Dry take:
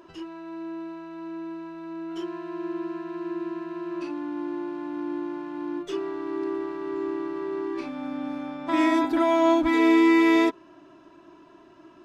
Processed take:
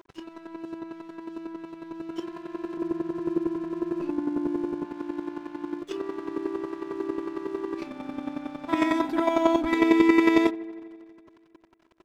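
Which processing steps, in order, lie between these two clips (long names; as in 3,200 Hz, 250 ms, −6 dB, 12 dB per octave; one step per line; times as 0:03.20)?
0:02.77–0:04.85: spectral tilt −3.5 dB per octave
square-wave tremolo 11 Hz, depth 60%, duty 15%
dead-zone distortion −53.5 dBFS
delay with a low-pass on its return 82 ms, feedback 76%, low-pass 2,400 Hz, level −21.5 dB
level +3.5 dB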